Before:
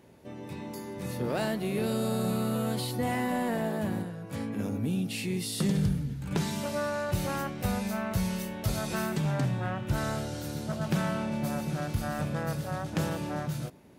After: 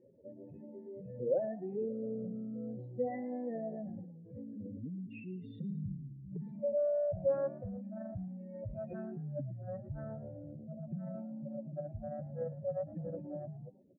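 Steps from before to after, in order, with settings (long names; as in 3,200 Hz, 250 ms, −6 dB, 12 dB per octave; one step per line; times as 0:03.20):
expanding power law on the bin magnitudes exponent 3
formant resonators in series e
echo with shifted repeats 111 ms, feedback 32%, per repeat +58 Hz, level −18.5 dB
level +7 dB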